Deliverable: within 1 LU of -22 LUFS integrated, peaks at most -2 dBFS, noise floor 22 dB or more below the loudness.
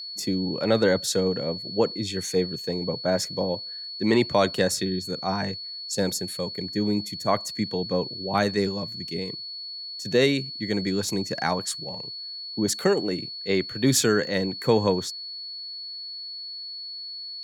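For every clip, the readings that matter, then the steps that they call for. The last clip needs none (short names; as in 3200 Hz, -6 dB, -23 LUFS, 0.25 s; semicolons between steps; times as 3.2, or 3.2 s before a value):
steady tone 4400 Hz; tone level -34 dBFS; loudness -26.0 LUFS; peak -7.5 dBFS; loudness target -22.0 LUFS
-> notch 4400 Hz, Q 30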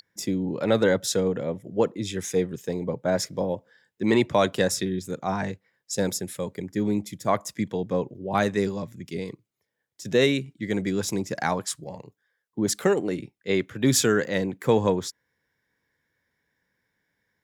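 steady tone none; loudness -26.0 LUFS; peak -8.0 dBFS; loudness target -22.0 LUFS
-> gain +4 dB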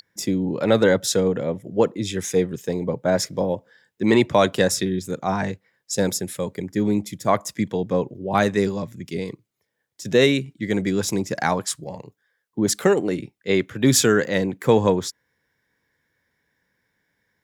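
loudness -22.0 LUFS; peak -4.0 dBFS; noise floor -74 dBFS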